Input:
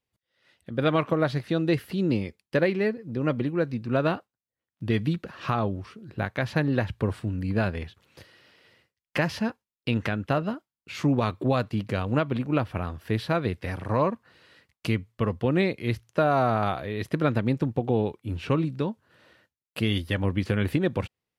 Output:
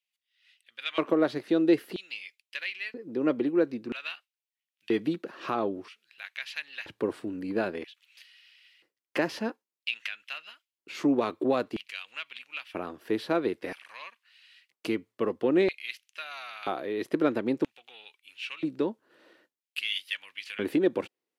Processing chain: in parallel at -8 dB: saturation -20 dBFS, distortion -13 dB; on the sum: LFO high-pass square 0.51 Hz 330–2600 Hz; trim -6 dB

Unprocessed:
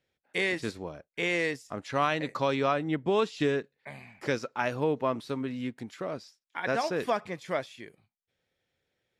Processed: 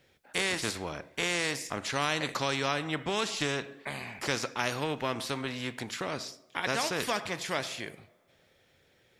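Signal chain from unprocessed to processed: two-slope reverb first 0.51 s, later 2.3 s, from -25 dB, DRR 17 dB; spectrum-flattening compressor 2:1

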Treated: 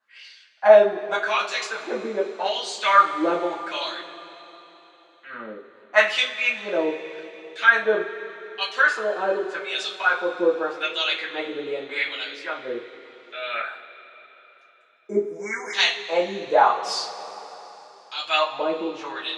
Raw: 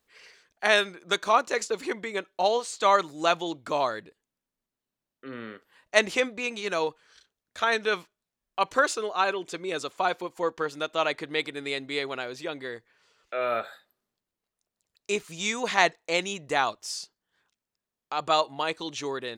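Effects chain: wah-wah 0.84 Hz 370–3700 Hz, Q 2.6; spectral selection erased 14.95–15.74 s, 2.3–5 kHz; two-slope reverb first 0.27 s, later 3.8 s, from -22 dB, DRR -8.5 dB; trim +4 dB

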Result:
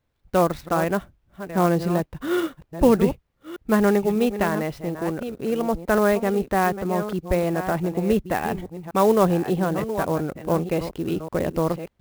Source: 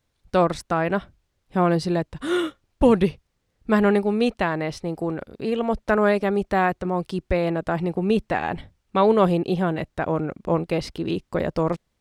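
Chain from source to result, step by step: chunks repeated in reverse 594 ms, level -10.5 dB; treble shelf 4.4 kHz -11.5 dB; sampling jitter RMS 0.025 ms

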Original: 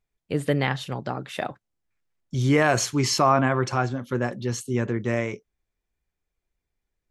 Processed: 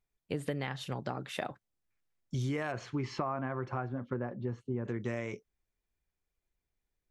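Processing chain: 2.71–4.84 s: low-pass 2.5 kHz -> 1.1 kHz 12 dB/octave; compression 12:1, threshold -26 dBFS, peak gain reduction 12.5 dB; trim -4.5 dB

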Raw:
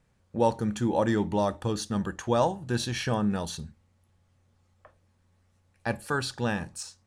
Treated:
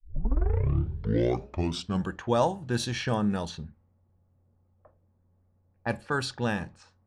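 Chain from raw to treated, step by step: tape start-up on the opening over 2.13 s; level-controlled noise filter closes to 710 Hz, open at -24 dBFS

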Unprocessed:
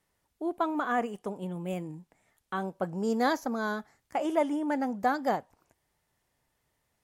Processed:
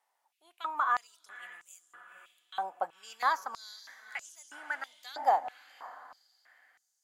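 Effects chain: echo that smears into a reverb 502 ms, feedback 41%, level -11.5 dB; step-sequenced high-pass 3.1 Hz 810–6400 Hz; trim -4.5 dB

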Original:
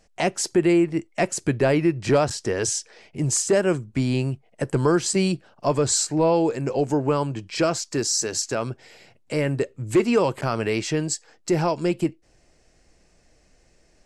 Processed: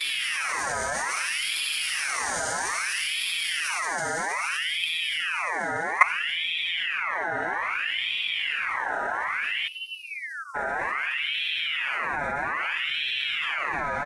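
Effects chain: Paulstretch 9.1×, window 1.00 s, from 5.71 s; gate with hold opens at -17 dBFS; peaking EQ 3.4 kHz -8.5 dB 1.8 oct; level held to a coarse grid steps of 17 dB; spectral selection erased 9.68–10.55 s, 230–5800 Hz; on a send: frequency-shifting echo 95 ms, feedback 56%, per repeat -100 Hz, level -22.5 dB; on the sum: ring modulator with a swept carrier 2 kHz, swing 45%, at 0.61 Hz; trim +8.5 dB

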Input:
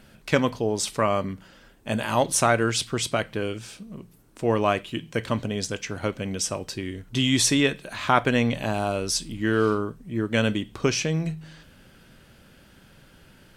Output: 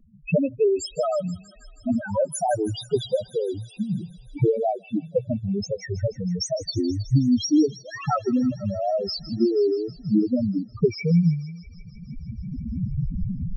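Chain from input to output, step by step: recorder AGC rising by 15 dB/s; transient shaper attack +6 dB, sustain -1 dB; loudest bins only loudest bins 2; wow and flutter 140 cents; on a send: feedback echo behind a high-pass 160 ms, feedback 77%, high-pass 2.3 kHz, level -13.5 dB; on the sum: trim +3.5 dB

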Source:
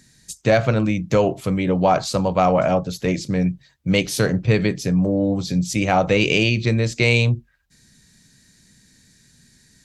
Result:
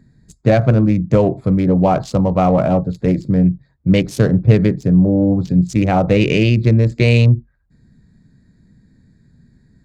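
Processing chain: local Wiener filter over 15 samples; bass shelf 480 Hz +10.5 dB; loudspeaker Doppler distortion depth 0.19 ms; trim -2 dB

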